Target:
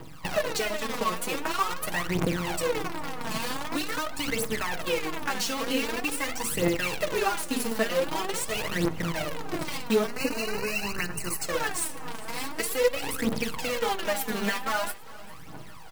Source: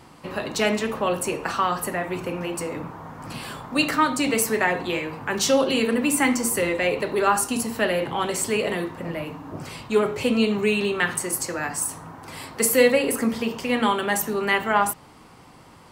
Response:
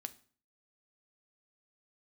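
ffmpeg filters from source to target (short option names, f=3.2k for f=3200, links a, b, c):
-filter_complex "[0:a]highpass=49,aecho=1:1:6.3:0.58,acompressor=threshold=-29dB:ratio=8,acrusher=bits=6:dc=4:mix=0:aa=0.000001,aphaser=in_gain=1:out_gain=1:delay=4.7:decay=0.72:speed=0.45:type=triangular,asettb=1/sr,asplit=3[a][b][c];[a]atrim=end=10.074[d];[b]atrim=start=10.07:end=11.43,asetpts=PTS-STARTPTS,afade=t=in:d=0.004:c=qsin,afade=t=out:st=1.356:d=0.004:c=qsin,asuperstop=centerf=3400:order=20:qfactor=3.7[e];[c]atrim=start=11.426[f];[d][e]acrossfade=d=0.004:c1=hsin:c2=qsin[g];[g][f]acrossfade=d=0.004:c1=qsin:c2=hsin,aecho=1:1:401|802|1203|1604|2005:0.0891|0.0526|0.031|0.0183|0.0108,asplit=2[h][i];[1:a]atrim=start_sample=2205,lowpass=6k[j];[i][j]afir=irnorm=-1:irlink=0,volume=-4dB[k];[h][k]amix=inputs=2:normalize=0,volume=-2.5dB"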